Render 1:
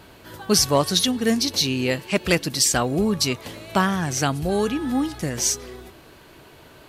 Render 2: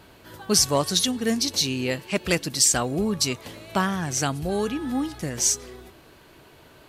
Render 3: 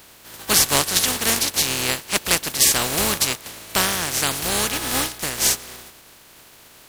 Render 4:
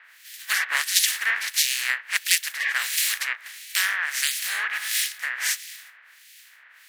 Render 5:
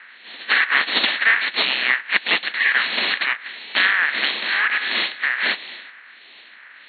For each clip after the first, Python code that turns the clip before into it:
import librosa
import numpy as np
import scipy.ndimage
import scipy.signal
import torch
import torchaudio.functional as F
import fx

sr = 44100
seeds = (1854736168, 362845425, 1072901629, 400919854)

y1 = fx.dynamic_eq(x, sr, hz=7600.0, q=1.4, threshold_db=-36.0, ratio=4.0, max_db=6)
y1 = y1 * librosa.db_to_amplitude(-3.5)
y2 = fx.spec_flatten(y1, sr, power=0.28)
y2 = y2 * librosa.db_to_amplitude(3.5)
y3 = fx.highpass_res(y2, sr, hz=1800.0, q=4.2)
y3 = fx.harmonic_tremolo(y3, sr, hz=1.5, depth_pct=100, crossover_hz=2300.0)
y3 = y3 * librosa.db_to_amplitude(-1.0)
y4 = fx.cvsd(y3, sr, bps=64000)
y4 = fx.brickwall_bandpass(y4, sr, low_hz=180.0, high_hz=4400.0)
y4 = y4 * librosa.db_to_amplitude(8.0)